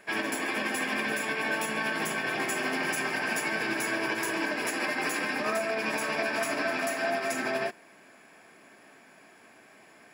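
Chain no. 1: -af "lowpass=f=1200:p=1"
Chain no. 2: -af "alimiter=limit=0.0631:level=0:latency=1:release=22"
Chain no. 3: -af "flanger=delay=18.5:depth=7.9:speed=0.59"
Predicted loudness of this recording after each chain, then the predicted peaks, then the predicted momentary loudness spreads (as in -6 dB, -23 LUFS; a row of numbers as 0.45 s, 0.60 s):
-33.0 LUFS, -31.5 LUFS, -32.0 LUFS; -20.0 dBFS, -24.0 dBFS, -19.5 dBFS; 2 LU, 1 LU, 1 LU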